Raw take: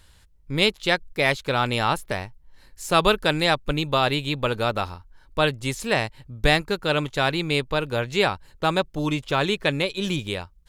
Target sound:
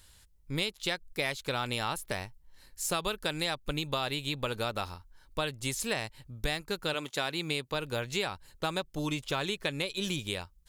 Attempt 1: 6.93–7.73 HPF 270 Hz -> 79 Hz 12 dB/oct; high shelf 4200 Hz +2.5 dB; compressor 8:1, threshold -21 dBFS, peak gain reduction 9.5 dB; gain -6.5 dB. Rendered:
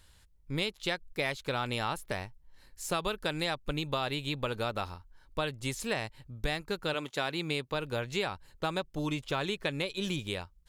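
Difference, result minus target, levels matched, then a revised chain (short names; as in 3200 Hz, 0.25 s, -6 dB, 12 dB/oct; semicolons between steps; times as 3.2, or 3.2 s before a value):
8000 Hz band -5.0 dB
6.93–7.73 HPF 270 Hz -> 79 Hz 12 dB/oct; high shelf 4200 Hz +10.5 dB; compressor 8:1, threshold -21 dBFS, peak gain reduction 10.5 dB; gain -6.5 dB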